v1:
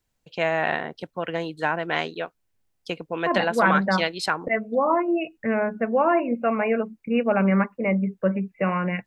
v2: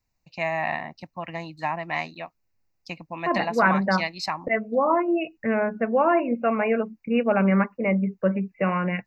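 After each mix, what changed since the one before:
first voice: add phaser with its sweep stopped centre 2,200 Hz, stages 8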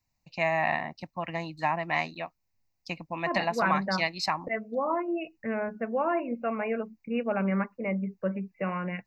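second voice −7.5 dB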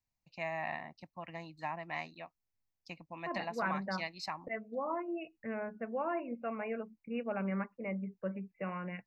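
first voice −11.5 dB
second voice −8.0 dB

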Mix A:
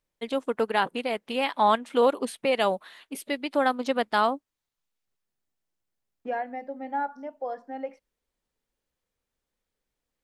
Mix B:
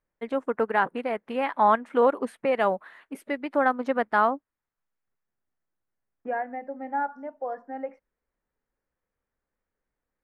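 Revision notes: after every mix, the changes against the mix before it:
master: add high shelf with overshoot 2,500 Hz −12 dB, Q 1.5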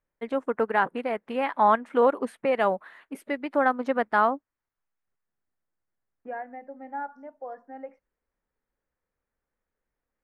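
second voice −6.0 dB

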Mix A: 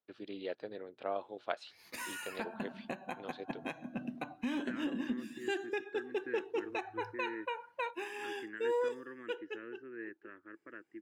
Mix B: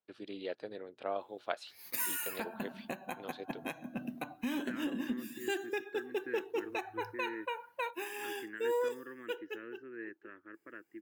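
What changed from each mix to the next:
master: remove high-frequency loss of the air 67 metres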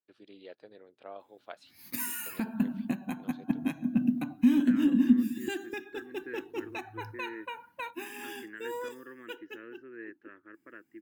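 first voice −8.5 dB
background: add low shelf with overshoot 340 Hz +9 dB, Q 3

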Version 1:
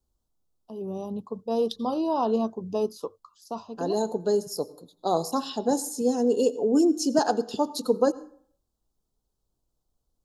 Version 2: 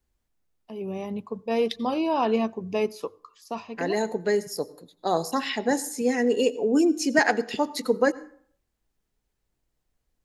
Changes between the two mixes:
first voice: send on
master: remove Butterworth band-reject 2,100 Hz, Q 0.92

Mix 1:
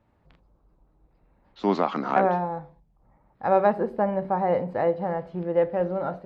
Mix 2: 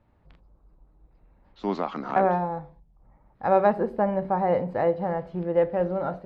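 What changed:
first voice −5.0 dB
master: add low-shelf EQ 64 Hz +8.5 dB

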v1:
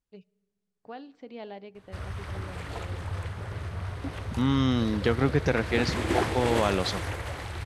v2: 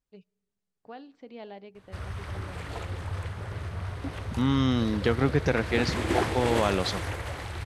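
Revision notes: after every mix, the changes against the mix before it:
first voice: send −8.0 dB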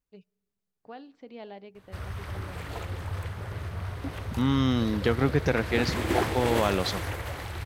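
master: remove low-pass filter 11,000 Hz 24 dB per octave

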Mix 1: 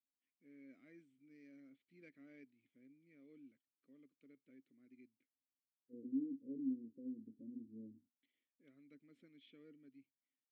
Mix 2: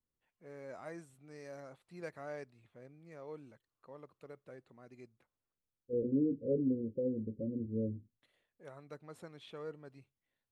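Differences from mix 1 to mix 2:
second voice +5.0 dB
master: remove formant filter i

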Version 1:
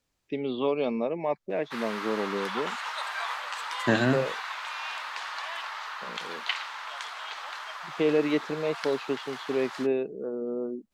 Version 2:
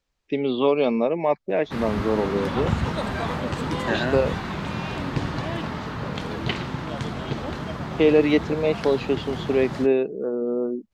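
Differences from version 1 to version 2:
first voice +7.0 dB
second voice: add band-pass filter 350–6,100 Hz
background: remove high-pass filter 930 Hz 24 dB per octave

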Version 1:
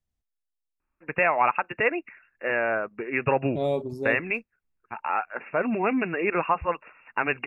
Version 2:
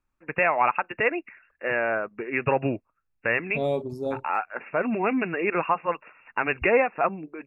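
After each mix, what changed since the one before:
first voice: entry −0.80 s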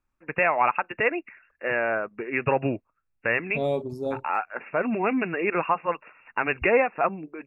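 nothing changed

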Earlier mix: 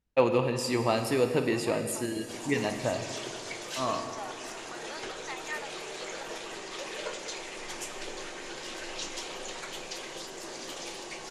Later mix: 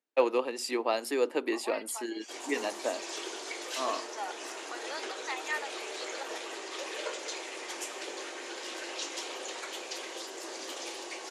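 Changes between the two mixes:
first voice: send off
second voice +3.5 dB
master: add Butterworth high-pass 280 Hz 36 dB per octave

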